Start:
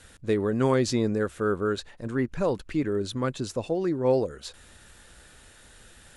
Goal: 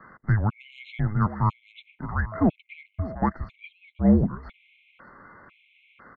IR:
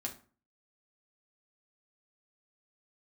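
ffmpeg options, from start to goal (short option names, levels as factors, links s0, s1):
-filter_complex "[0:a]highpass=f=410:t=q:w=0.5412,highpass=f=410:t=q:w=1.307,lowpass=f=2700:t=q:w=0.5176,lowpass=f=2700:t=q:w=0.7071,lowpass=f=2700:t=q:w=1.932,afreqshift=-310,asettb=1/sr,asplit=3[s0][s1][s2];[s0]atrim=end=2.324[s3];[s1]atrim=start=2.32:end=3.15,asetpts=PTS-STARTPTS,afade=t=in:d=0.004:c=qsin,afade=t=out:st=0.826:d=0.004:c=qsin,aeval=exprs='val(0)+0.00708*sin(2*PI*650*n/s)':c=same[s4];[s2]atrim=start=3.146[s5];[s3][s4]acrossfade=d=0.004:c1=hsin:c2=qsin[s6];[s6][s5]acrossfade=d=0.004:c1=qsin:c2=hsin,asplit=2[s7][s8];[s8]asoftclip=type=tanh:threshold=0.0398,volume=0.422[s9];[s7][s9]amix=inputs=2:normalize=0,aecho=1:1:607:0.126,afftfilt=real='re*gt(sin(2*PI*1*pts/sr)*(1-2*mod(floor(b*sr/1024/2100),2)),0)':imag='im*gt(sin(2*PI*1*pts/sr)*(1-2*mod(floor(b*sr/1024/2100),2)),0)':win_size=1024:overlap=0.75,volume=1.88"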